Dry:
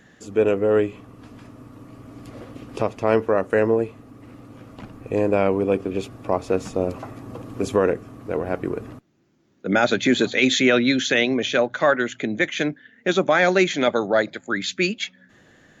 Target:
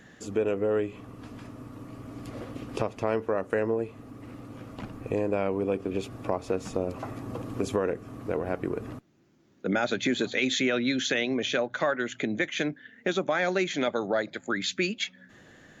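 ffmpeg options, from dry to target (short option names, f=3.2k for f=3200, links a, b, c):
-af "acompressor=threshold=-27dB:ratio=2.5"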